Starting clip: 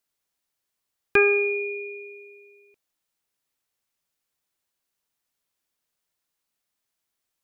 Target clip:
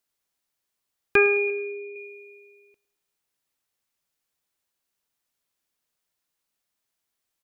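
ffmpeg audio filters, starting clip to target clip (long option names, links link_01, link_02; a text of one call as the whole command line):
ffmpeg -i in.wav -filter_complex "[0:a]asettb=1/sr,asplit=3[link_01][link_02][link_03];[link_01]atrim=end=1.504[link_04];[link_02]atrim=start=1.5:end=1.96,asetpts=PTS-STARTPTS,afade=type=in:duration=0.004:curve=qsin,afade=type=out:start_time=0.456:duration=0.004:curve=qsin,lowpass=1800[link_05];[link_03]atrim=start=1.956[link_06];[link_04][link_05]acrossfade=duration=0.004:curve1=hsin:curve2=qsin[link_07];[link_07][link_06]acrossfade=duration=0.004:curve1=qsin:curve2=hsin,aecho=1:1:107|214|321|428:0.1|0.05|0.025|0.0125" out.wav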